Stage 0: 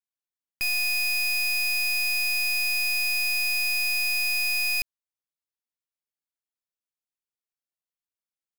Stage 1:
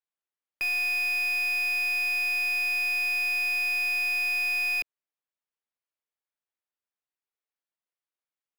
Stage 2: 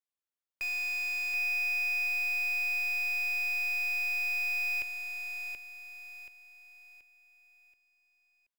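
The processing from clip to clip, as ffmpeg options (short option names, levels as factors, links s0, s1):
-filter_complex "[0:a]acrossover=split=290 3300:gain=0.2 1 0.2[s0][s1][s2];[s0][s1][s2]amix=inputs=3:normalize=0,volume=1.26"
-af "asoftclip=type=hard:threshold=0.0501,aecho=1:1:729|1458|2187|2916|3645:0.531|0.202|0.0767|0.0291|0.0111,volume=0.562"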